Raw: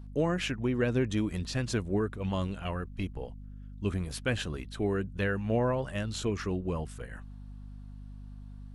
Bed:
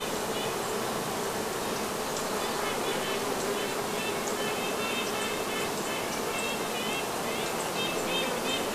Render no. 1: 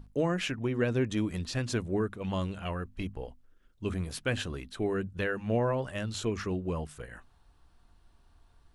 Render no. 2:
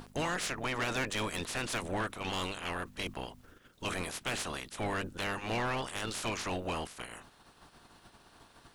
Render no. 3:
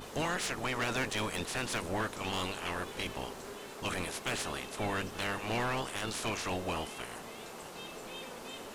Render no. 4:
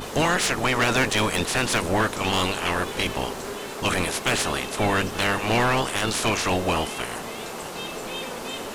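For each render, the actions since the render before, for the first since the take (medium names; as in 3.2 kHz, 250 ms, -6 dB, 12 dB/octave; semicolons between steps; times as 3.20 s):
hum notches 50/100/150/200/250 Hz
spectral peaks clipped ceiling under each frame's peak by 27 dB; saturation -28 dBFS, distortion -9 dB
add bed -15 dB
trim +12 dB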